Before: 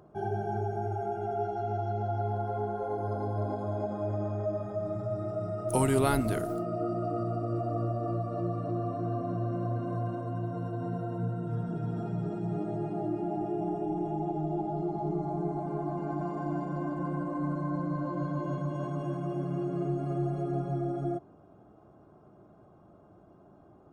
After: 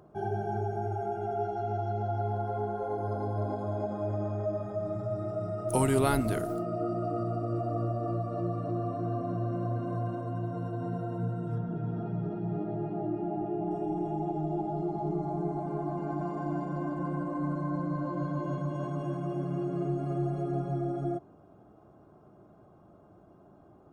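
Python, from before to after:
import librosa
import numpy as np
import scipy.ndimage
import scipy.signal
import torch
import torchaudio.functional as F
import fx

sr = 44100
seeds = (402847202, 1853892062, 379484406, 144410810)

y = fx.air_absorb(x, sr, metres=250.0, at=(11.58, 13.71))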